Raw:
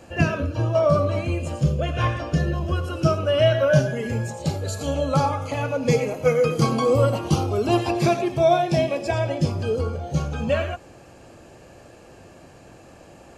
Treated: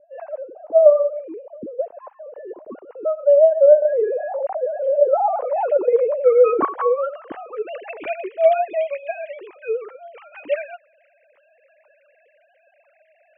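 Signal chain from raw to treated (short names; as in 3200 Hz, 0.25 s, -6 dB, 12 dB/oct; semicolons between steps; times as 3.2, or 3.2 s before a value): sine-wave speech; low-pass sweep 560 Hz -> 2400 Hz, 5–8.08; 3.82–6.65 fast leveller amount 50%; gain -3 dB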